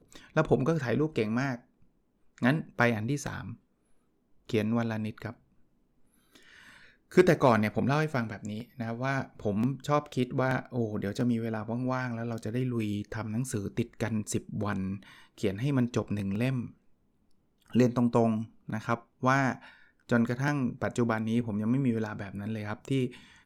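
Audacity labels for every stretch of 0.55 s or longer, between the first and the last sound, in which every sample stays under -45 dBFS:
1.580000	2.380000	silence
3.540000	4.490000	silence
5.320000	6.350000	silence
16.710000	17.700000	silence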